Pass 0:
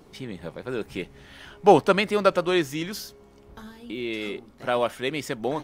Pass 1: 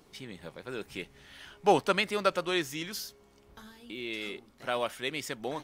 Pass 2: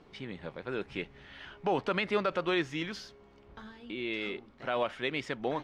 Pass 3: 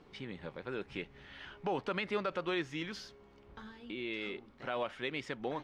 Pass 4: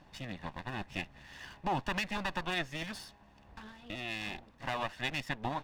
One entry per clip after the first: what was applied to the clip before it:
tilt shelf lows -4 dB, about 1300 Hz; gain -5.5 dB
LPF 3000 Hz 12 dB/oct; limiter -21.5 dBFS, peak gain reduction 11.5 dB; gain +3 dB
notch 660 Hz, Q 15; in parallel at -1.5 dB: compressor, threshold -38 dBFS, peak gain reduction 13 dB; on the sum: gain -7 dB
minimum comb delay 1.1 ms; harmonic-percussive split percussive +4 dB

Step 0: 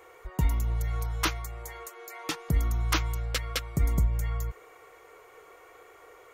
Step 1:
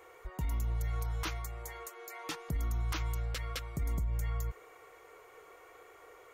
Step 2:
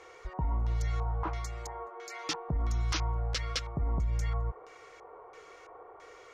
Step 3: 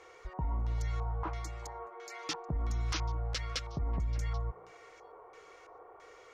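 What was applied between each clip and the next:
limiter -24 dBFS, peak gain reduction 10.5 dB; gain -3 dB
LFO low-pass square 1.5 Hz 910–5500 Hz; gain +3 dB
delay with a stepping band-pass 0.196 s, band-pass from 250 Hz, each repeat 1.4 oct, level -10.5 dB; gain -3 dB

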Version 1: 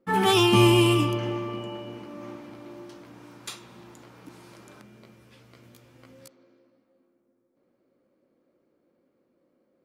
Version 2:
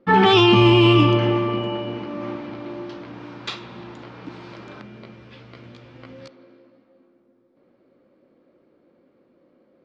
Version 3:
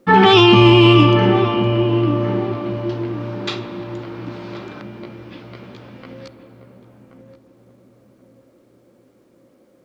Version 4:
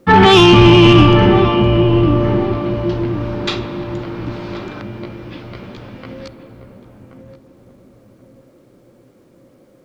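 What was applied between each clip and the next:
LPF 4400 Hz 24 dB/oct; maximiser +14.5 dB; gain -4.5 dB
bit-crush 12-bit; darkening echo 1.078 s, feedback 42%, low-pass 820 Hz, level -7 dB; gain +4 dB
octaver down 1 oct, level -5 dB; soft clip -5.5 dBFS, distortion -16 dB; gain +4.5 dB

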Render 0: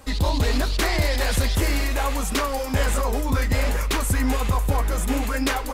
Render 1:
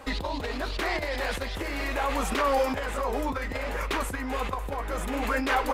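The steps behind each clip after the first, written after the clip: negative-ratio compressor -25 dBFS, ratio -1; tone controls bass -10 dB, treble -12 dB; gain +1.5 dB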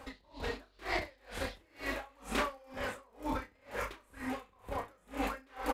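reverse bouncing-ball echo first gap 30 ms, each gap 1.2×, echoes 5; dB-linear tremolo 2.1 Hz, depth 33 dB; gain -5 dB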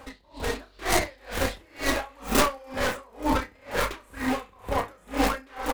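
tracing distortion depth 0.39 ms; AGC gain up to 7 dB; gain +4.5 dB

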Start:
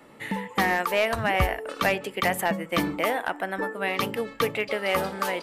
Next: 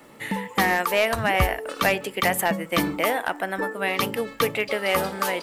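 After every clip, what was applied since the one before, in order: crackle 500/s -54 dBFS; high shelf 5700 Hz +5.5 dB; gain +2 dB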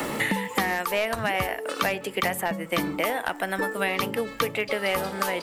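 three-band squash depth 100%; gain -4 dB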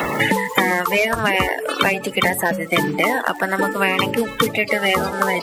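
bin magnitudes rounded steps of 30 dB; gain +8.5 dB

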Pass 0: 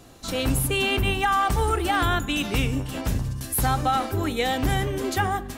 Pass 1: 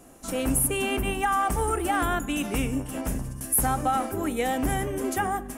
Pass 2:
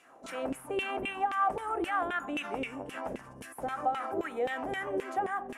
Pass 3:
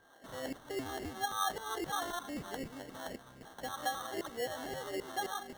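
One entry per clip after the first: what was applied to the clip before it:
fifteen-band EQ 100 Hz -9 dB, 250 Hz +4 dB, 630 Hz +3 dB, 4000 Hz -12 dB, 10000 Hz +9 dB; gain -3 dB
limiter -21.5 dBFS, peak gain reduction 10 dB; LFO band-pass saw down 3.8 Hz 410–2600 Hz; gain +6 dB
sample-and-hold 18×; whine 1600 Hz -61 dBFS; gain -6 dB

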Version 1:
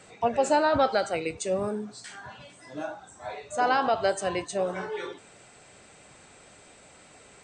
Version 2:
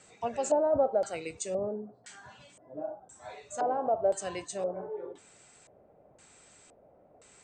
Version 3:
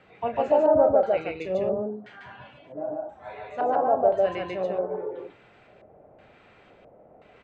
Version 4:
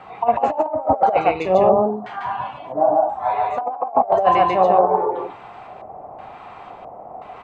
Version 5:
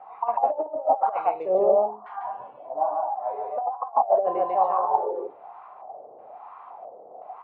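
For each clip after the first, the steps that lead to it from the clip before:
LFO low-pass square 0.97 Hz 620–7500 Hz; gain -8 dB
LPF 3000 Hz 24 dB/oct; on a send: loudspeakers at several distances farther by 11 m -10 dB, 50 m -1 dB; on the sum: gain +4.5 dB
band shelf 920 Hz +14 dB 1 oct; negative-ratio compressor -20 dBFS, ratio -0.5; gain +4.5 dB
wah 1.1 Hz 450–1100 Hz, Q 3.8

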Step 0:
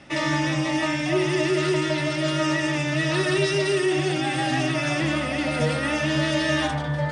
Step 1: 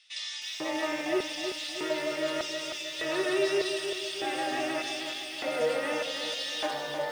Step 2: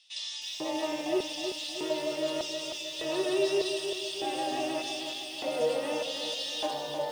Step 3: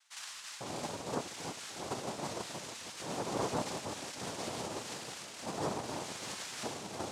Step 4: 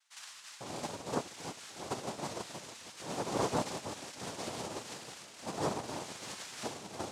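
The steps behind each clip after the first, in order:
LFO high-pass square 0.83 Hz 450–3700 Hz; lo-fi delay 0.314 s, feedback 55%, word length 7-bit, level -6.5 dB; gain -8 dB
band shelf 1700 Hz -10.5 dB 1.1 oct
noise vocoder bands 2; gain -8 dB
upward expander 1.5:1, over -48 dBFS; gain +3 dB

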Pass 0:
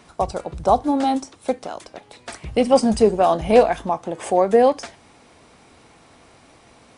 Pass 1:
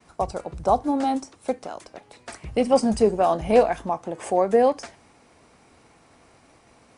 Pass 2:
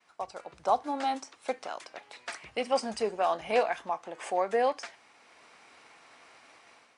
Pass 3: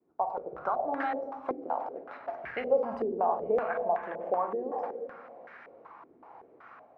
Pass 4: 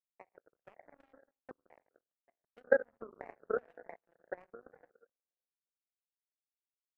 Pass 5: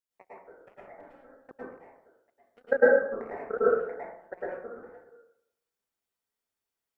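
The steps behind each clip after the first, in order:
bell 3500 Hz -4.5 dB 0.53 oct; expander -49 dBFS; gain -3.5 dB
AGC gain up to 10 dB; band-pass 2400 Hz, Q 0.64; gain -5 dB
compressor 6:1, threshold -32 dBFS, peak gain reduction 12 dB; on a send at -4 dB: reverb RT60 1.8 s, pre-delay 15 ms; on the sum: stepped low-pass 5.3 Hz 350–1700 Hz
Wiener smoothing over 9 samples; graphic EQ 125/500/1000/2000 Hz +7/+8/-8/-10 dB; power-law curve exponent 3
plate-style reverb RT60 0.72 s, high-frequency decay 0.35×, pre-delay 95 ms, DRR -9.5 dB

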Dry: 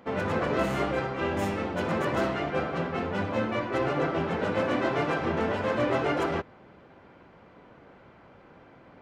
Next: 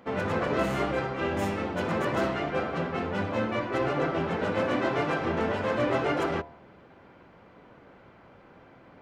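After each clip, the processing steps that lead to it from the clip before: de-hum 76.43 Hz, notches 13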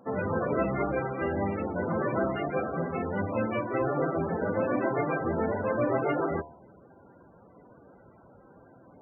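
loudest bins only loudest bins 32

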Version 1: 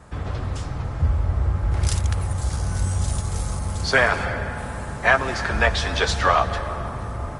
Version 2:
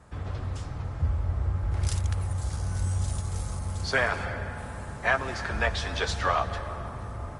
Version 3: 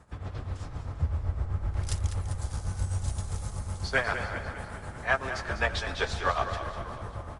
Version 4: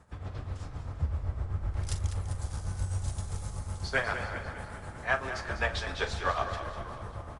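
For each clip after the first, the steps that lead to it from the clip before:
bell 93 Hz +4 dB 0.29 oct; gain -7.5 dB
tremolo 7.8 Hz, depth 72%; on a send: frequency-shifting echo 0.198 s, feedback 59%, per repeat -31 Hz, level -10 dB
doubler 41 ms -12.5 dB; gain -2.5 dB

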